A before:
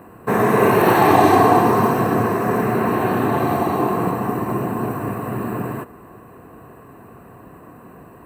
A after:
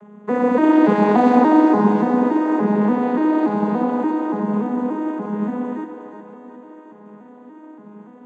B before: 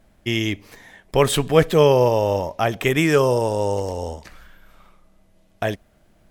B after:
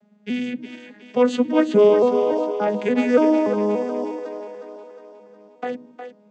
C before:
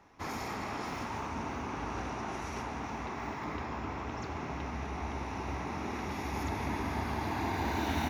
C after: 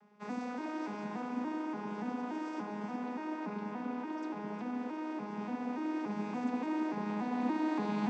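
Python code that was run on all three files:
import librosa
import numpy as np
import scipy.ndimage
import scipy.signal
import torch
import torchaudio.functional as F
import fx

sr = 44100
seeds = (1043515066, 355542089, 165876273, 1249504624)

y = fx.vocoder_arp(x, sr, chord='minor triad', root=56, every_ms=288)
y = fx.echo_split(y, sr, split_hz=310.0, low_ms=95, high_ms=361, feedback_pct=52, wet_db=-8.5)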